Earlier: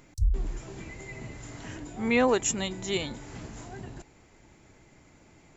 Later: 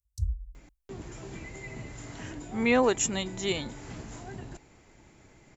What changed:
speech: entry +0.55 s; background: add high-pass 56 Hz 24 dB/octave

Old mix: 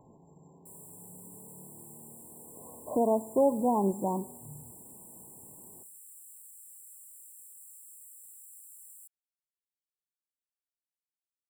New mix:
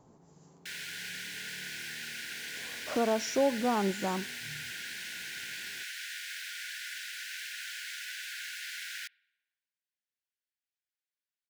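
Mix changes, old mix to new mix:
speech: send -10.5 dB; master: remove brick-wall FIR band-stop 1.1–7.3 kHz

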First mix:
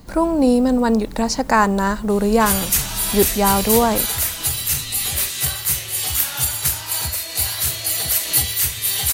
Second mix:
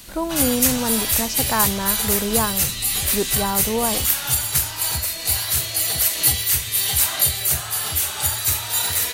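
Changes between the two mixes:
speech -7.0 dB; background: entry -2.10 s

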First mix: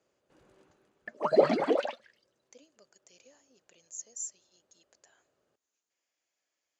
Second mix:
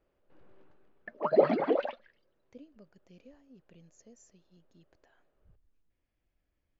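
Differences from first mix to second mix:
speech: remove high-pass 550 Hz 12 dB/octave; master: add distance through air 290 m

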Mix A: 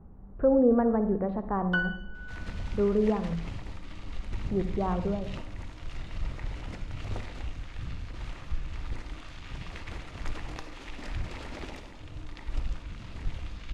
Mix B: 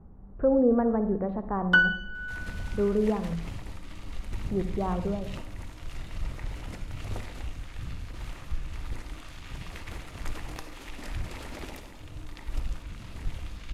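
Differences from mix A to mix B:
speech: add distance through air 130 m; first sound +9.0 dB; master: remove low-pass 6 kHz 12 dB/octave

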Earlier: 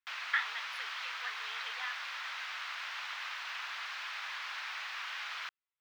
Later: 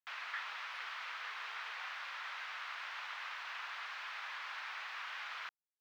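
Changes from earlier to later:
speech -9.0 dB; master: add treble shelf 2.5 kHz -9.5 dB

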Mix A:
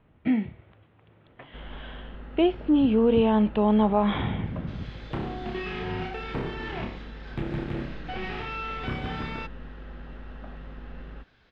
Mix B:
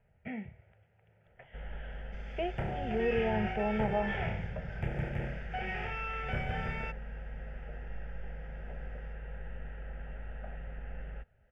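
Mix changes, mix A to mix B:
speech -6.0 dB; second sound: entry -2.55 s; master: add static phaser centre 1.1 kHz, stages 6

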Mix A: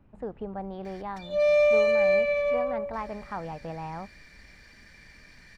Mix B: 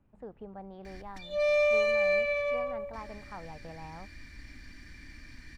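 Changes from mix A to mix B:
speech -9.0 dB; background: add resonant low shelf 360 Hz +9.5 dB, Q 3

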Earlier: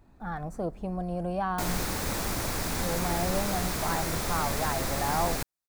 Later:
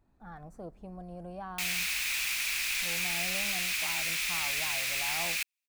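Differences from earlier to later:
speech -11.5 dB; background: add resonant high-pass 2.5 kHz, resonance Q 4.8

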